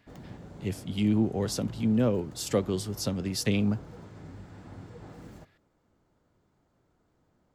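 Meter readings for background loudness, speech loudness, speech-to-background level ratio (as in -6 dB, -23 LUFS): -47.0 LUFS, -29.0 LUFS, 18.0 dB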